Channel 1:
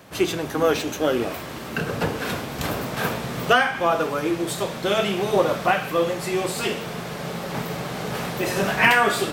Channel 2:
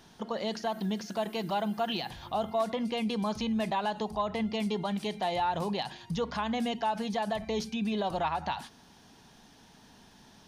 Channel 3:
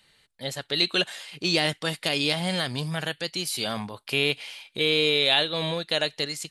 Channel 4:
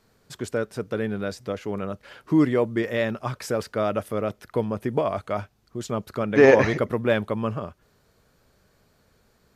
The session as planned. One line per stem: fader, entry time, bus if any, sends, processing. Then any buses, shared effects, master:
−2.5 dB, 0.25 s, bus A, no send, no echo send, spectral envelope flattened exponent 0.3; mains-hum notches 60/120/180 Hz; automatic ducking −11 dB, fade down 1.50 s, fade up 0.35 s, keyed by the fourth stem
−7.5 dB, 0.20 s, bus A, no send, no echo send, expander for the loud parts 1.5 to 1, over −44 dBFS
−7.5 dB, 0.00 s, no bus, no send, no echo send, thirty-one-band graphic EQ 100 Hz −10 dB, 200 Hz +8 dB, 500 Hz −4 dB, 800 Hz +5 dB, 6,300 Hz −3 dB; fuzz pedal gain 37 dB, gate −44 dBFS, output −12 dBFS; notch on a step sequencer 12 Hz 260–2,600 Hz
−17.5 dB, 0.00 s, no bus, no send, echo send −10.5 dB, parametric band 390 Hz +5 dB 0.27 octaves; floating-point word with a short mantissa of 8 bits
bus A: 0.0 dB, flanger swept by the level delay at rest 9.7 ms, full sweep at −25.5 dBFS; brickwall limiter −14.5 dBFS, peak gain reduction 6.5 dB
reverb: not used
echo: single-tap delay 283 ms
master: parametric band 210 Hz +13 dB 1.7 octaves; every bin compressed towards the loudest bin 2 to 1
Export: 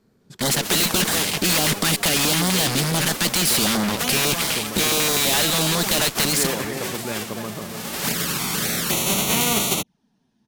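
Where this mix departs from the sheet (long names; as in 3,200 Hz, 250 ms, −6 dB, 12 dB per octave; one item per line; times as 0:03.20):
stem 1: entry 0.25 s → 0.50 s
stem 2 −7.5 dB → −17.5 dB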